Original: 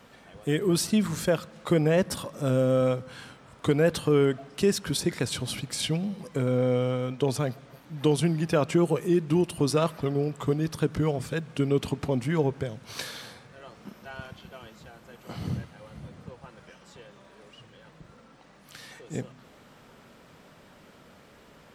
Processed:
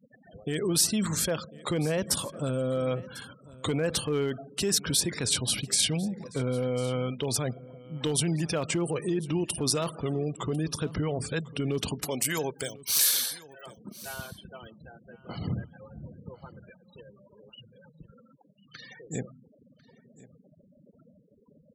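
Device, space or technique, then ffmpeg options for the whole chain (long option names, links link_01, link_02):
clipper into limiter: -filter_complex "[0:a]asettb=1/sr,asplit=3[link_01][link_02][link_03];[link_01]atrim=end=12.004[link_04];[link_02]atrim=start=12:end=13.66,asetpts=PTS-STARTPTS,afade=type=in:duration=0.004:curve=qsin,afade=type=out:start_time=1.656:duration=0.004:curve=qsin,aemphasis=mode=production:type=riaa[link_05];[link_03]atrim=start=13.656[link_06];[link_04][link_05]acrossfade=duration=0.004:curve1=hsin:curve2=qsin[link_07];[link_07][link_06]acrossfade=duration=0.004:curve1=qsin:curve2=hsin,afftfilt=real='re*gte(hypot(re,im),0.00891)':imag='im*gte(hypot(re,im),0.00891)':win_size=1024:overlap=0.75,asoftclip=type=hard:threshold=-14dB,alimiter=limit=-21dB:level=0:latency=1:release=16,highshelf=frequency=3900:gain=11.5,aecho=1:1:1048:0.0944"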